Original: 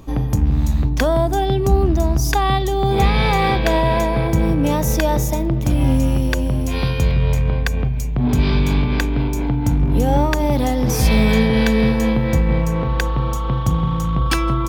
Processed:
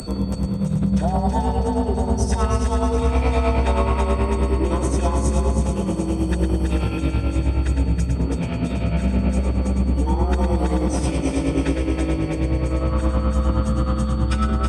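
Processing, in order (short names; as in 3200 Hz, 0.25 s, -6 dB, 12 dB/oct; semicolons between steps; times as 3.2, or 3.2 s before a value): high shelf 4500 Hz -6 dB; notch 1900 Hz, Q 9.3; limiter -14.5 dBFS, peak gain reduction 10.5 dB; tremolo 9.5 Hz, depth 70%; frequency shift +65 Hz; whine 8200 Hz -29 dBFS; formant-preserving pitch shift -10.5 st; on a send: multi-head echo 0.108 s, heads first and third, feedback 67%, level -6.5 dB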